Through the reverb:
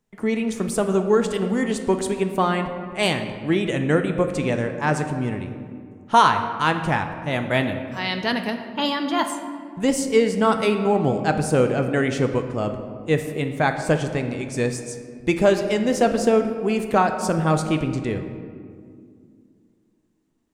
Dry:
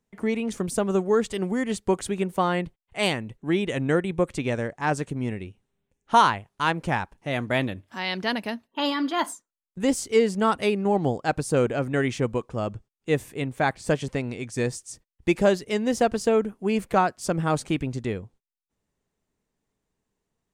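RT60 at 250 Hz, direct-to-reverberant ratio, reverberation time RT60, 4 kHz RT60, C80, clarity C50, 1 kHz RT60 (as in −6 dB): 3.2 s, 6.0 dB, 2.2 s, 1.1 s, 9.5 dB, 8.0 dB, 2.0 s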